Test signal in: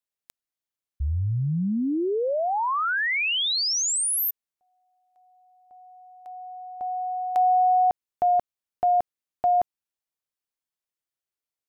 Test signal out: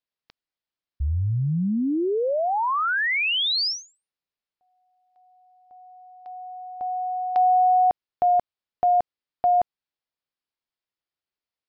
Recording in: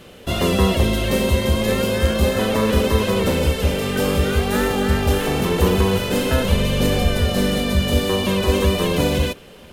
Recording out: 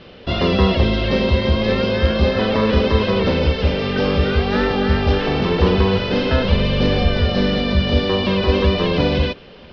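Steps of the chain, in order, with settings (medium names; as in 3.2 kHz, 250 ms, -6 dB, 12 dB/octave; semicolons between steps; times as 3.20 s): steep low-pass 5.3 kHz 72 dB/octave; trim +1.5 dB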